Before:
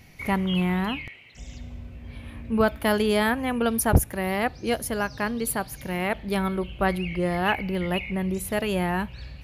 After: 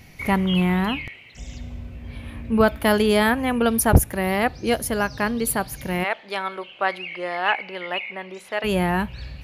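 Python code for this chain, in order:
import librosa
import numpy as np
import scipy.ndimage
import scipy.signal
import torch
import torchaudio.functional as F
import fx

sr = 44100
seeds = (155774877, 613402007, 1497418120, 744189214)

y = fx.bandpass_edges(x, sr, low_hz=640.0, high_hz=fx.line((6.03, 6400.0), (8.63, 3700.0)), at=(6.03, 8.63), fade=0.02)
y = y * 10.0 ** (4.0 / 20.0)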